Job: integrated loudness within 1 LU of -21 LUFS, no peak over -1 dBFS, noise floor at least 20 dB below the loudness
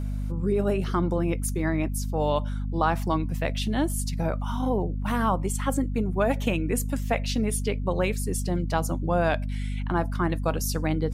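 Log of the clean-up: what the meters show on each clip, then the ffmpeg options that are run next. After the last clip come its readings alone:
hum 50 Hz; highest harmonic 250 Hz; hum level -26 dBFS; loudness -27.0 LUFS; peak level -9.0 dBFS; loudness target -21.0 LUFS
-> -af "bandreject=f=50:t=h:w=6,bandreject=f=100:t=h:w=6,bandreject=f=150:t=h:w=6,bandreject=f=200:t=h:w=6,bandreject=f=250:t=h:w=6"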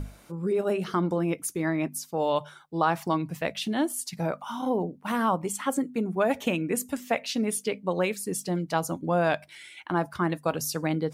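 hum not found; loudness -28.5 LUFS; peak level -10.5 dBFS; loudness target -21.0 LUFS
-> -af "volume=2.37"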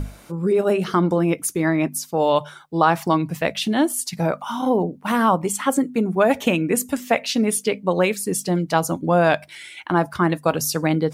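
loudness -21.0 LUFS; peak level -3.0 dBFS; noise floor -47 dBFS

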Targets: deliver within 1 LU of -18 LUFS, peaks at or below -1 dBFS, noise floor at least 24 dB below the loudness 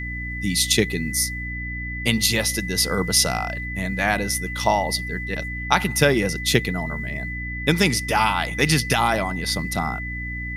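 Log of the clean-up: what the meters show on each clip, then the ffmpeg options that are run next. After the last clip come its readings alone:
hum 60 Hz; highest harmonic 300 Hz; hum level -29 dBFS; steady tone 2 kHz; tone level -30 dBFS; loudness -22.0 LUFS; peak level -2.5 dBFS; loudness target -18.0 LUFS
-> -af "bandreject=f=60:t=h:w=4,bandreject=f=120:t=h:w=4,bandreject=f=180:t=h:w=4,bandreject=f=240:t=h:w=4,bandreject=f=300:t=h:w=4"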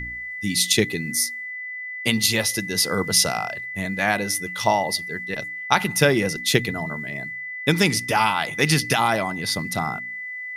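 hum not found; steady tone 2 kHz; tone level -30 dBFS
-> -af "bandreject=f=2000:w=30"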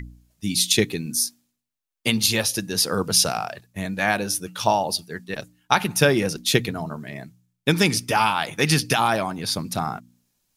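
steady tone not found; loudness -22.0 LUFS; peak level -3.0 dBFS; loudness target -18.0 LUFS
-> -af "volume=1.58,alimiter=limit=0.891:level=0:latency=1"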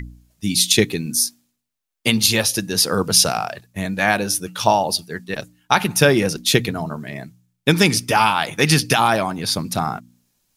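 loudness -18.0 LUFS; peak level -1.0 dBFS; noise floor -77 dBFS

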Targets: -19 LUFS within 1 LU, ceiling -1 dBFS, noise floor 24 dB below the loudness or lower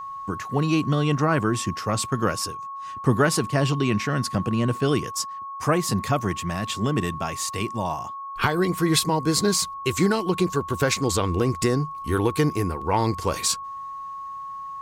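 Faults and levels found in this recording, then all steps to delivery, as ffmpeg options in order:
steady tone 1.1 kHz; tone level -32 dBFS; loudness -24.0 LUFS; peak level -6.5 dBFS; loudness target -19.0 LUFS
-> -af "bandreject=f=1100:w=30"
-af "volume=1.78"

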